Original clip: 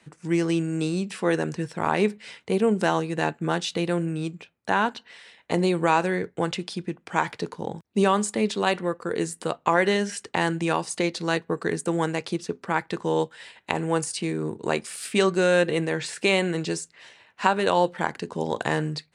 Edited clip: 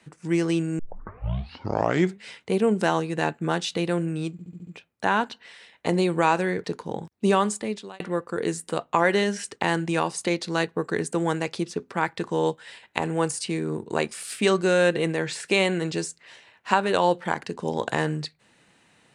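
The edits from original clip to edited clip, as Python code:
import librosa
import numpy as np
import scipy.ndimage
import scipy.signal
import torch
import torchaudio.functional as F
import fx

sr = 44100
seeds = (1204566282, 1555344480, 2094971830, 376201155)

y = fx.edit(x, sr, fx.tape_start(start_s=0.79, length_s=1.45),
    fx.stutter(start_s=4.32, slice_s=0.07, count=6),
    fx.cut(start_s=6.29, length_s=1.08),
    fx.fade_out_span(start_s=8.14, length_s=0.59), tone=tone)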